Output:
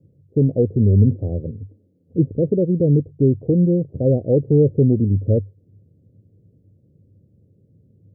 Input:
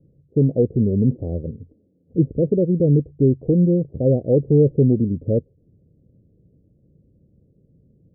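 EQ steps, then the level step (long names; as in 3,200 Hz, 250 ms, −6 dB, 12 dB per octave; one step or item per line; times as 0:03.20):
high-pass filter 76 Hz
parametric band 99 Hz +13.5 dB 0.23 octaves
0.0 dB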